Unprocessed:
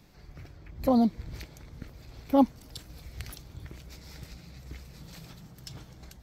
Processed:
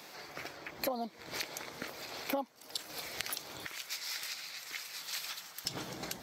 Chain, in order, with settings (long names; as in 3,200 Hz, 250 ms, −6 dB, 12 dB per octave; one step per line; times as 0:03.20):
high-pass filter 540 Hz 12 dB per octave, from 0:03.66 1,400 Hz, from 0:05.65 280 Hz
downward compressor 20 to 1, threshold −46 dBFS, peak gain reduction 26 dB
level +13.5 dB